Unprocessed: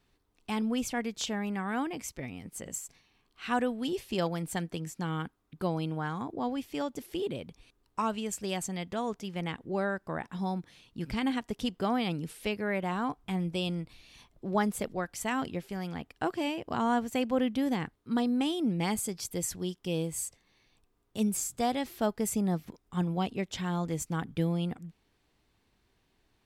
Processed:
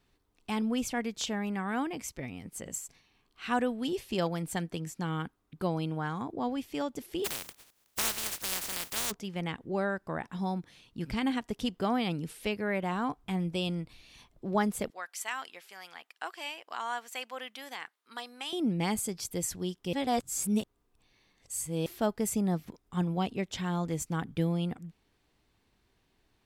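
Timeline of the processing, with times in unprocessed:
0:07.24–0:09.10: compressing power law on the bin magnitudes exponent 0.11
0:14.90–0:18.53: high-pass filter 1,100 Hz
0:19.93–0:21.86: reverse

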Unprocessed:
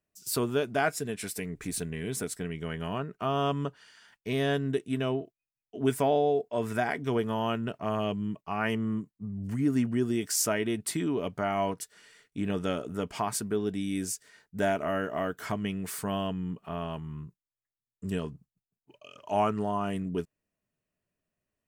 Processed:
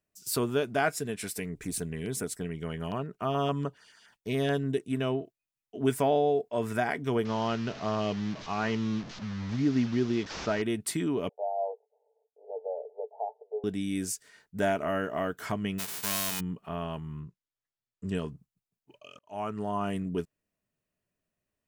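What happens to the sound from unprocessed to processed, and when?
0:01.49–0:04.97: auto-filter notch saw down 7 Hz 870–4,800 Hz
0:07.25–0:10.62: linear delta modulator 32 kbit/s, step −37 dBFS
0:11.29–0:13.64: Chebyshev band-pass filter 430–870 Hz, order 5
0:15.78–0:16.39: spectral envelope flattened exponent 0.1
0:17.20–0:18.15: low-pass filter 6,300 Hz
0:19.19–0:19.82: fade in

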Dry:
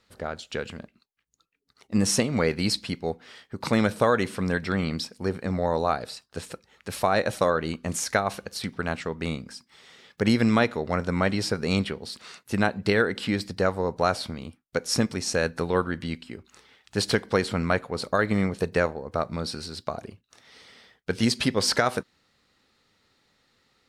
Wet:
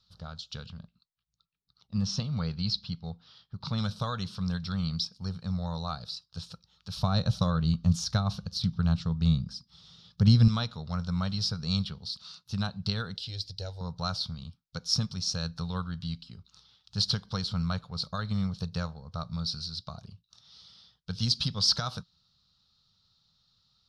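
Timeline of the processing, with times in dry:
0:00.66–0:03.78: high-frequency loss of the air 140 metres
0:06.97–0:10.48: low-shelf EQ 420 Hz +11 dB
0:13.16–0:13.81: phaser with its sweep stopped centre 480 Hz, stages 4
whole clip: drawn EQ curve 170 Hz 0 dB, 310 Hz −25 dB, 1,300 Hz −8 dB, 2,000 Hz −25 dB, 3,700 Hz +2 dB, 5,300 Hz +2 dB, 7,900 Hz −17 dB

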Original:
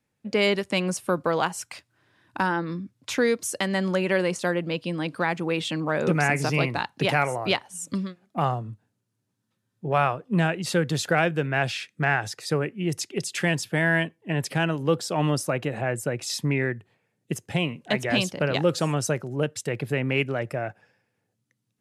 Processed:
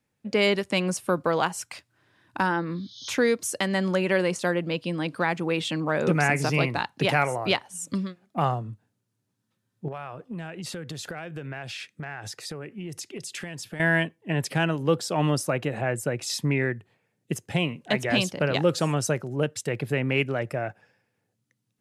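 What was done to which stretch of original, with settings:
0:02.69–0:03.08: healed spectral selection 3,000–6,600 Hz
0:09.88–0:13.80: downward compressor 8 to 1, threshold −32 dBFS

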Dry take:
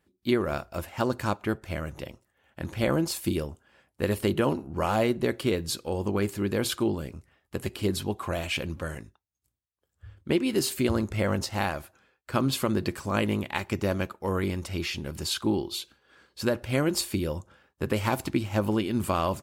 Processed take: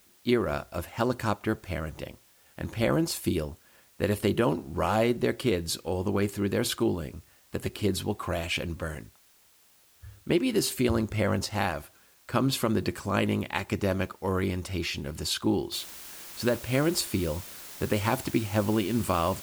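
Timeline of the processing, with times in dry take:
0:15.72: noise floor change −61 dB −44 dB

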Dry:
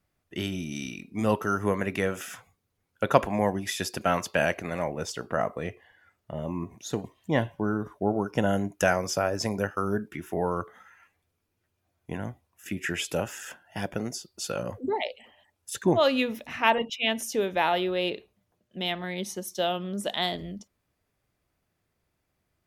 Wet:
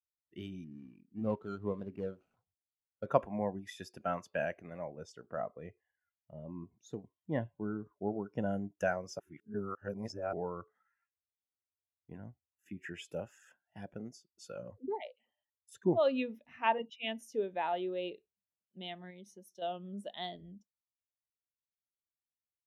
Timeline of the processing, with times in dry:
0:00.64–0:03.06: running median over 25 samples
0:09.19–0:10.33: reverse
0:19.10–0:19.62: downward compressor 3 to 1, threshold −33 dBFS
whole clip: every bin expanded away from the loudest bin 1.5 to 1; level −8 dB

